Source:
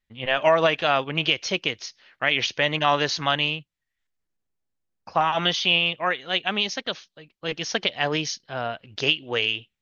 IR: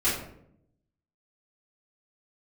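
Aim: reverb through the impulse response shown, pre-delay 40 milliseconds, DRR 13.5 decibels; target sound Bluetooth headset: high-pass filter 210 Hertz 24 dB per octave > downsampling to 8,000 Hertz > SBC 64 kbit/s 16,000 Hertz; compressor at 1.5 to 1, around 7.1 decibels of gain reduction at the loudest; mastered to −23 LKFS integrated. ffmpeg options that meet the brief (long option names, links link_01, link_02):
-filter_complex "[0:a]acompressor=threshold=-34dB:ratio=1.5,asplit=2[link_01][link_02];[1:a]atrim=start_sample=2205,adelay=40[link_03];[link_02][link_03]afir=irnorm=-1:irlink=0,volume=-25.5dB[link_04];[link_01][link_04]amix=inputs=2:normalize=0,highpass=frequency=210:width=0.5412,highpass=frequency=210:width=1.3066,aresample=8000,aresample=44100,volume=6.5dB" -ar 16000 -c:a sbc -b:a 64k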